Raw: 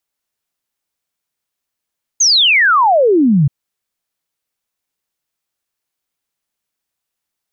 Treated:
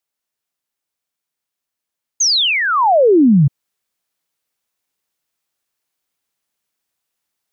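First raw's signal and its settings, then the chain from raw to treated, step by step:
log sweep 6.7 kHz -> 130 Hz 1.28 s -7.5 dBFS
bass shelf 90 Hz -6 dB; gain riding 0.5 s; dynamic bell 1.7 kHz, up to -5 dB, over -26 dBFS, Q 0.95

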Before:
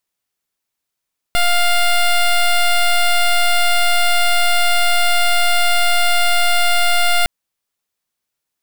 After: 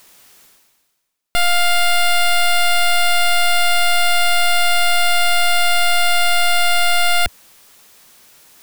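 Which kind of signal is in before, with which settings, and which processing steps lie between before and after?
pulse 702 Hz, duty 11% -13 dBFS 5.91 s
peaking EQ 81 Hz -5 dB 1.2 oct; reverse; upward compressor, threshold -22 dBFS; reverse

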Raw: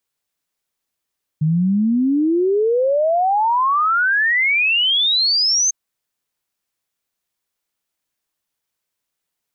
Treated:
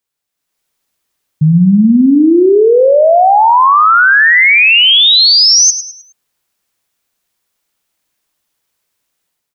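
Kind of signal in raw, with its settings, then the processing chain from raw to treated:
log sweep 150 Hz -> 6.4 kHz 4.30 s -13.5 dBFS
level rider gain up to 10 dB; feedback delay 104 ms, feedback 38%, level -11.5 dB

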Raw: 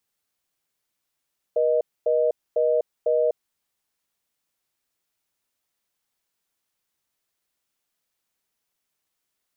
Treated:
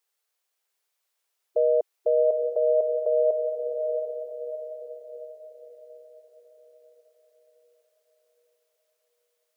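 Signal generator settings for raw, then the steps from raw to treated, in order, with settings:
call progress tone reorder tone, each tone -20.5 dBFS 1.82 s
brick-wall FIR high-pass 370 Hz; on a send: echo that smears into a reverb 718 ms, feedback 46%, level -5 dB

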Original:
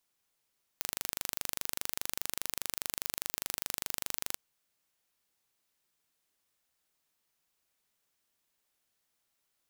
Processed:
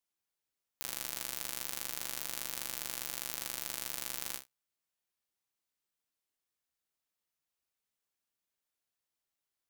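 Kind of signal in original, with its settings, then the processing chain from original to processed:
pulse train 24.9 per s, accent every 0, -6 dBFS 3.54 s
feedback comb 65 Hz, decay 0.26 s, harmonics all, mix 60%; waveshaping leveller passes 3

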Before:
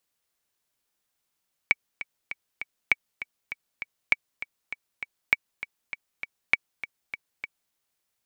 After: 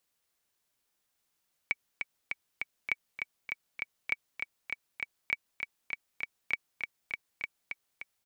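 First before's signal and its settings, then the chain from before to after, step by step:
metronome 199 bpm, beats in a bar 4, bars 5, 2.27 kHz, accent 14.5 dB -5 dBFS
peak limiter -15 dBFS; on a send: delay 1178 ms -8.5 dB

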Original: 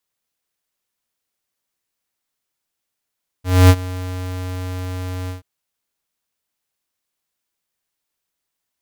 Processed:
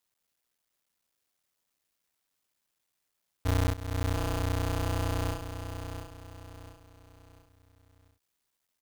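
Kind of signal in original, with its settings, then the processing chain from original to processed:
ADSR square 91.7 Hz, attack 255 ms, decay 55 ms, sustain -19.5 dB, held 1.85 s, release 131 ms -6.5 dBFS
cycle switcher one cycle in 3, muted; compression 20:1, threshold -25 dBFS; on a send: feedback delay 693 ms, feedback 38%, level -8.5 dB

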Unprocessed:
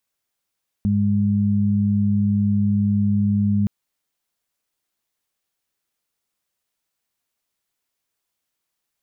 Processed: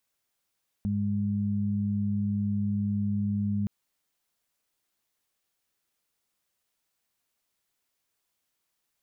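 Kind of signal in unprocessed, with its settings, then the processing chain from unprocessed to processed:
steady additive tone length 2.82 s, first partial 102 Hz, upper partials 2.5 dB, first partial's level -20 dB
peak limiter -23 dBFS

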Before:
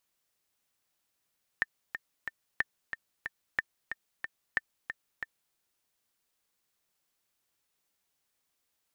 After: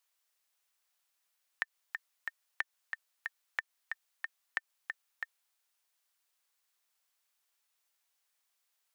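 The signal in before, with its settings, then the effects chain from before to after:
metronome 183 bpm, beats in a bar 3, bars 4, 1.8 kHz, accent 8.5 dB -13.5 dBFS
high-pass 740 Hz 12 dB/octave; compression, threshold -30 dBFS

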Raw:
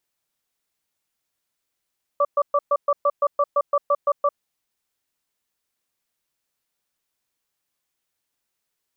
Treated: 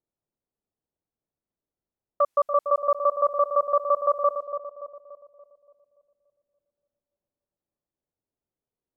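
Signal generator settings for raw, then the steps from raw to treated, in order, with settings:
cadence 575 Hz, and 1.16 kHz, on 0.05 s, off 0.12 s, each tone -18 dBFS 2.13 s
level-controlled noise filter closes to 550 Hz, open at -22 dBFS; on a send: bucket-brigade echo 287 ms, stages 2048, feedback 49%, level -8 dB

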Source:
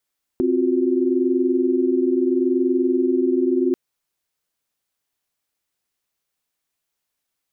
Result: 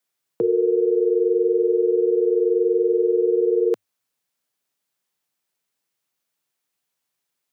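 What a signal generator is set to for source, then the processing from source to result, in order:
chord C4/F4/F#4 sine, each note -20.5 dBFS 3.34 s
frequency shift +100 Hz

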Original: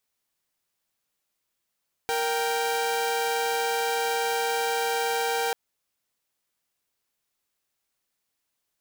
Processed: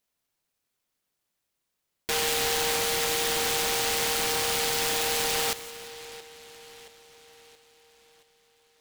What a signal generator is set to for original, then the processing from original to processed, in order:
chord A#4/G5 saw, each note -24.5 dBFS 3.44 s
two-band feedback delay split 1.6 kHz, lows 674 ms, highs 174 ms, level -13.5 dB; delay time shaken by noise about 2.9 kHz, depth 0.25 ms

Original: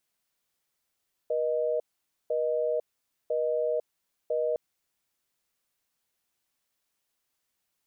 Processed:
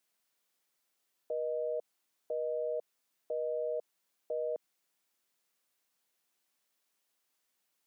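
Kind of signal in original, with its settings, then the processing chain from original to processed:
call progress tone busy tone, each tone -27.5 dBFS 3.26 s
high-pass 190 Hz 12 dB/octave; peak limiter -28.5 dBFS

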